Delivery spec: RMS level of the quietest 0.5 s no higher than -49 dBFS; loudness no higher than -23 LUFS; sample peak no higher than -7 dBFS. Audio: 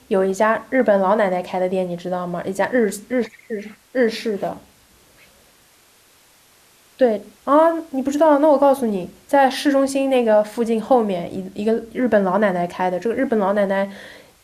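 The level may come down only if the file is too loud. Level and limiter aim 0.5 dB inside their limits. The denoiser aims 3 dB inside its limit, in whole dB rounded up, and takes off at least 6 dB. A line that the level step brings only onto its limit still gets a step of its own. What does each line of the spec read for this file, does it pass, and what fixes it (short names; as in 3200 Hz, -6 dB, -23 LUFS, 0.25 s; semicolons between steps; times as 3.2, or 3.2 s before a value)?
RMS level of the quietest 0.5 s -54 dBFS: OK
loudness -19.0 LUFS: fail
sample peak -5.0 dBFS: fail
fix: gain -4.5 dB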